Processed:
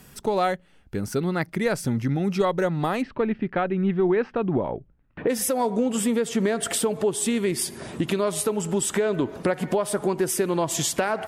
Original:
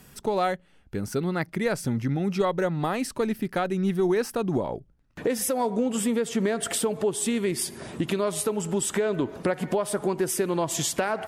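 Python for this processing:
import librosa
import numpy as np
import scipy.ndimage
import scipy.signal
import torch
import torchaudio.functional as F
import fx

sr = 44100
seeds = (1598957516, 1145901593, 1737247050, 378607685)

y = fx.lowpass(x, sr, hz=2900.0, slope=24, at=(3.01, 5.28), fade=0.02)
y = y * librosa.db_to_amplitude(2.0)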